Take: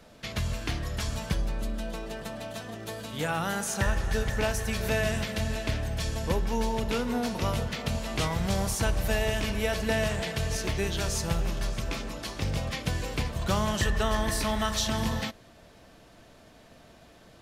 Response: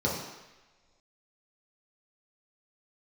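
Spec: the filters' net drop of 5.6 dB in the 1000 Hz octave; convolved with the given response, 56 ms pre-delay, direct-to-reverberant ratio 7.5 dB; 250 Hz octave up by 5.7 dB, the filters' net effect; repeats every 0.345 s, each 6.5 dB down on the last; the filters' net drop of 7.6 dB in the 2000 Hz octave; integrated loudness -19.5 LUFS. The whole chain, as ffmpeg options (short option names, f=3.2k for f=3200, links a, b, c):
-filter_complex "[0:a]equalizer=f=250:t=o:g=7.5,equalizer=f=1k:t=o:g=-6,equalizer=f=2k:t=o:g=-8,aecho=1:1:345|690|1035|1380|1725|2070:0.473|0.222|0.105|0.0491|0.0231|0.0109,asplit=2[a][b];[1:a]atrim=start_sample=2205,adelay=56[c];[b][c]afir=irnorm=-1:irlink=0,volume=-18dB[d];[a][d]amix=inputs=2:normalize=0,volume=7dB"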